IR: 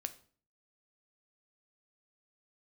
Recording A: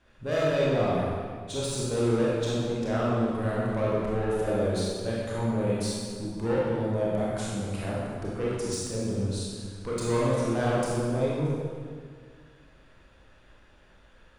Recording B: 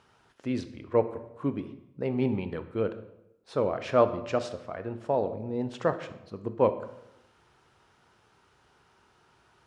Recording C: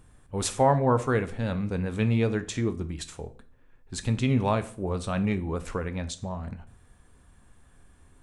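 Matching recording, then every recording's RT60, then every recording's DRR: C; 1.9 s, 0.85 s, 0.45 s; -7.0 dB, 10.0 dB, 9.5 dB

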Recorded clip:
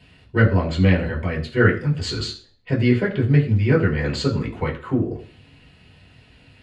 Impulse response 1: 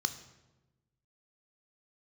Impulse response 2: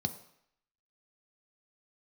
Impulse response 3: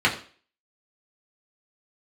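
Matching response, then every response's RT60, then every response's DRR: 3; 1.1 s, 0.70 s, 0.40 s; 9.5 dB, 7.5 dB, -4.0 dB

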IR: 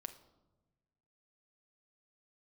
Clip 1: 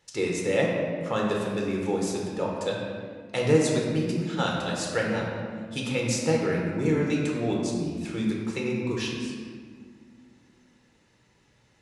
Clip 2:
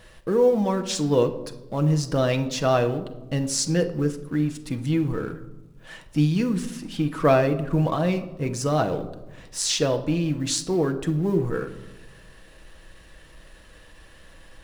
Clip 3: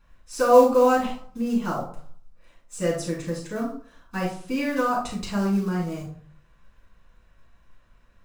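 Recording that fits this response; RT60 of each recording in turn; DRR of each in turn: 2; 1.8 s, 1.1 s, 0.55 s; -2.5 dB, 6.0 dB, -6.0 dB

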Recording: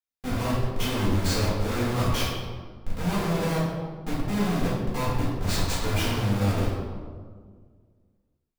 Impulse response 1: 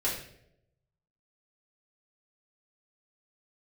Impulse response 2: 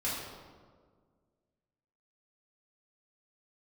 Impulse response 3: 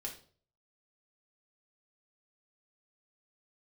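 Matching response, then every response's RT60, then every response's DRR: 2; no single decay rate, 1.7 s, 0.45 s; -7.5 dB, -8.5 dB, -2.0 dB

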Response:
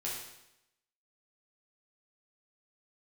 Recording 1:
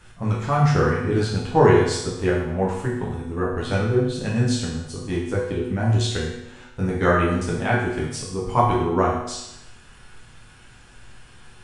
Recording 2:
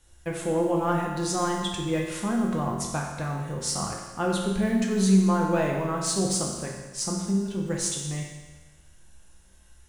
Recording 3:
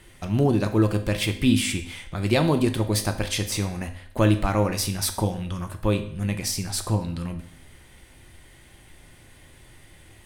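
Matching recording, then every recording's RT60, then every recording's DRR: 1; 0.85 s, 1.3 s, 0.65 s; -6.0 dB, -1.0 dB, 6.5 dB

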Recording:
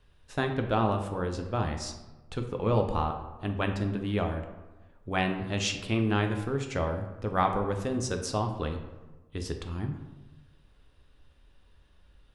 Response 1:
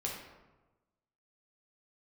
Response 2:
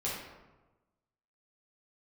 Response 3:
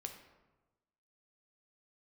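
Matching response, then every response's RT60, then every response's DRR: 3; 1.2 s, 1.2 s, 1.2 s; -3.0 dB, -7.5 dB, 4.0 dB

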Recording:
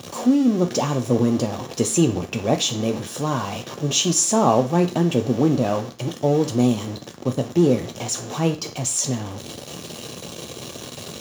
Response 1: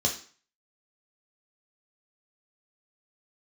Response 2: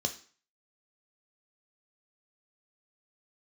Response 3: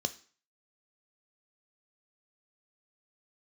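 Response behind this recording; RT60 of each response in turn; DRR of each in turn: 2; 0.45 s, 0.45 s, 0.45 s; 0.0 dB, 5.5 dB, 10.5 dB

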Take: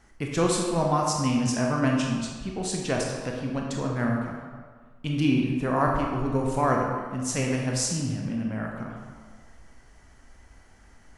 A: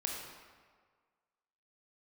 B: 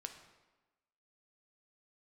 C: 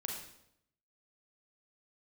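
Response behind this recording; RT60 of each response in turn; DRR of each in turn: A; 1.7 s, 1.2 s, 0.75 s; -0.5 dB, 5.0 dB, -0.5 dB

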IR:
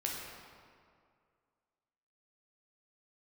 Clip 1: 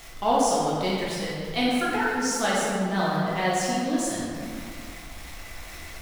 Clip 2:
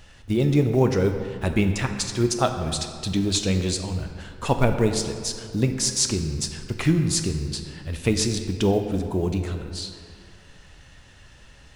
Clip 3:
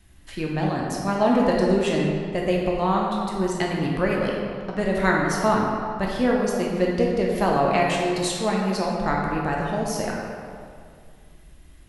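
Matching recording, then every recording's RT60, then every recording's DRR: 3; 2.2 s, 2.1 s, 2.2 s; -7.5 dB, 5.5 dB, -2.5 dB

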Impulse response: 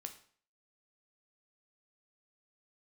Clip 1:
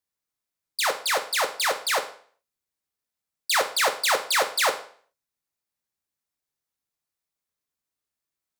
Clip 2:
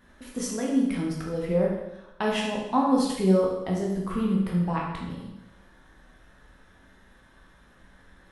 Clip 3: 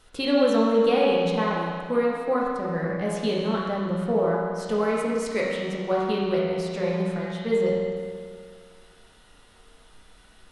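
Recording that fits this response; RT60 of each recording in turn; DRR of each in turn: 1; 0.50 s, 0.90 s, 2.0 s; 5.5 dB, -3.0 dB, -5.0 dB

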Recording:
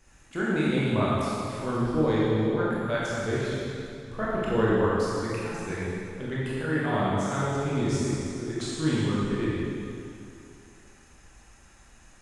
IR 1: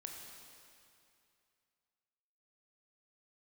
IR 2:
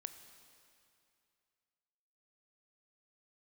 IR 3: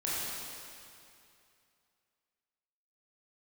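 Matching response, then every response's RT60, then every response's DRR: 3; 2.5 s, 2.5 s, 2.5 s; 0.5 dB, 9.0 dB, -8.5 dB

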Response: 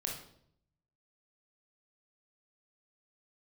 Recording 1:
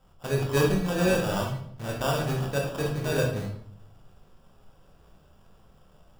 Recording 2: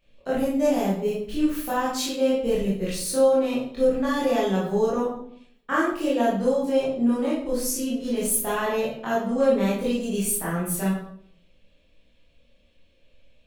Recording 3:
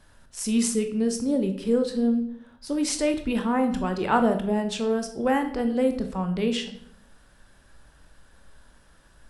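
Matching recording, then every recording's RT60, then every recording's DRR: 1; 0.65 s, 0.65 s, 0.70 s; -1.0 dB, -9.0 dB, 6.5 dB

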